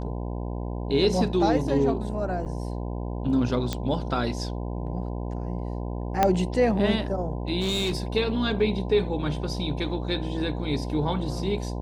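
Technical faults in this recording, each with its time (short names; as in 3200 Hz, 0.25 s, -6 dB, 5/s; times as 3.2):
buzz 60 Hz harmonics 17 -31 dBFS
2.45–2.46 gap 8.3 ms
3.73 pop -13 dBFS
6.23 pop -7 dBFS
7.6–8.03 clipped -22 dBFS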